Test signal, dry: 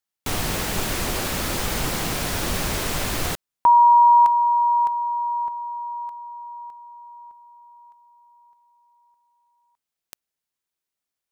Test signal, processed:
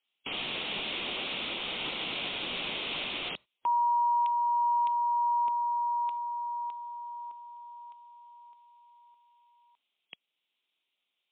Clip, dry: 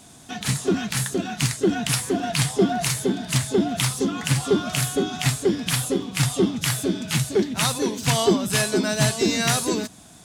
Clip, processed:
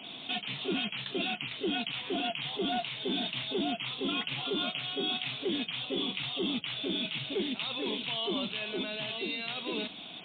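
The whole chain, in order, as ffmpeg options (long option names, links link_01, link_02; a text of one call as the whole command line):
ffmpeg -i in.wav -filter_complex "[0:a]aexciter=amount=15.7:drive=7.1:freq=2700,acrossover=split=190 2600:gain=0.1 1 0.0631[link_01][link_02][link_03];[link_01][link_02][link_03]amix=inputs=3:normalize=0,areverse,acompressor=threshold=-26dB:ratio=16:attack=0.46:release=47:knee=6:detection=rms,areverse,alimiter=level_in=0.5dB:limit=-24dB:level=0:latency=1:release=401,volume=-0.5dB,volume=2.5dB" -ar 8000 -c:a libmp3lame -b:a 24k out.mp3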